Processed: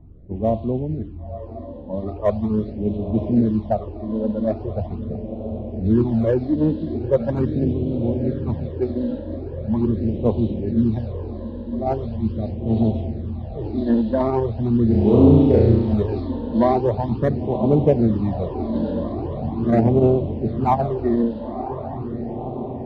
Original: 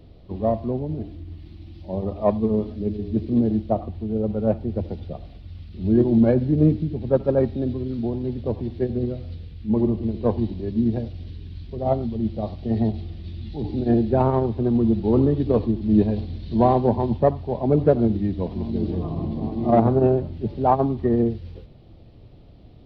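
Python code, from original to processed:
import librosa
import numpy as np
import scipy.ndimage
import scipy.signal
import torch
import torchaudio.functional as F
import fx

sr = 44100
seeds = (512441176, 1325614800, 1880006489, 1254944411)

p1 = fx.env_lowpass(x, sr, base_hz=730.0, full_db=-17.0)
p2 = fx.echo_diffused(p1, sr, ms=1007, feedback_pct=68, wet_db=-10.5)
p3 = np.clip(p2, -10.0 ** (-15.5 / 20.0), 10.0 ** (-15.5 / 20.0))
p4 = p2 + (p3 * 10.0 ** (-7.5 / 20.0))
p5 = fx.phaser_stages(p4, sr, stages=12, low_hz=120.0, high_hz=1700.0, hz=0.41, feedback_pct=0)
y = fx.room_flutter(p5, sr, wall_m=5.8, rt60_s=0.98, at=(14.87, 15.94))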